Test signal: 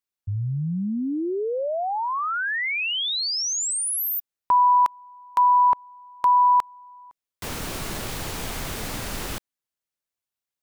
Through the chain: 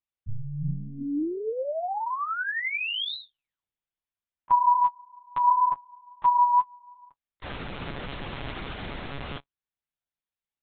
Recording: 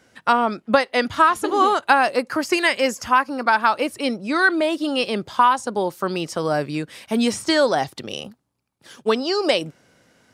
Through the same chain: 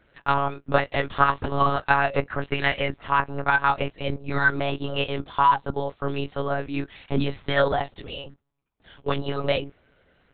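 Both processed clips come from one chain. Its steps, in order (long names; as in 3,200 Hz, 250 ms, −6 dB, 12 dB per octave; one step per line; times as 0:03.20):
flanger 0.71 Hz, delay 8.2 ms, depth 4.4 ms, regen +39%
one-pitch LPC vocoder at 8 kHz 140 Hz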